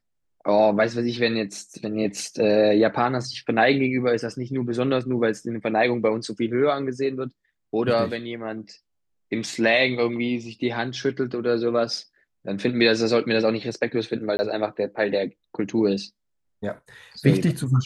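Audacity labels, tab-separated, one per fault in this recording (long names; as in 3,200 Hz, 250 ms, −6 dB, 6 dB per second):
14.370000	14.390000	drop-out 20 ms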